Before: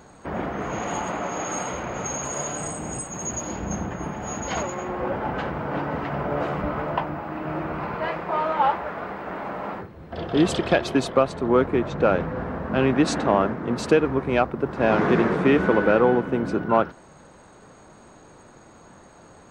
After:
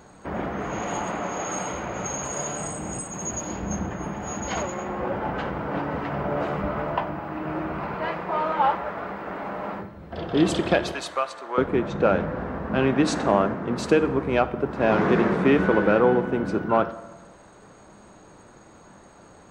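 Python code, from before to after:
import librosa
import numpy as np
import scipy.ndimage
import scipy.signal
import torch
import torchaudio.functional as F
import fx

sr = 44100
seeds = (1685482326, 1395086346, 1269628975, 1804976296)

y = fx.highpass(x, sr, hz=930.0, slope=12, at=(10.92, 11.58))
y = fx.rev_fdn(y, sr, rt60_s=1.2, lf_ratio=1.1, hf_ratio=0.65, size_ms=30.0, drr_db=12.0)
y = y * librosa.db_to_amplitude(-1.0)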